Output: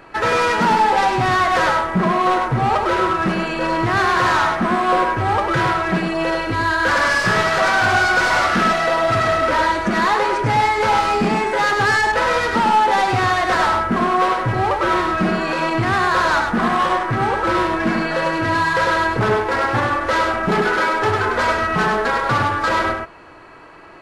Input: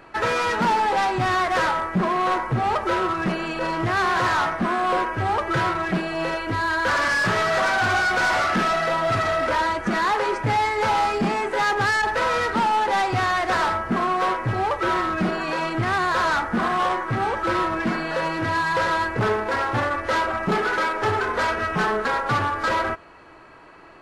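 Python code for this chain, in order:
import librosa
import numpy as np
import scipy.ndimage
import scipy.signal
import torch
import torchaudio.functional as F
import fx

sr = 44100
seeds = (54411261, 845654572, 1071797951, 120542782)

y = x + 10.0 ** (-4.5 / 20.0) * np.pad(x, (int(101 * sr / 1000.0), 0))[:len(x)]
y = y * librosa.db_to_amplitude(3.5)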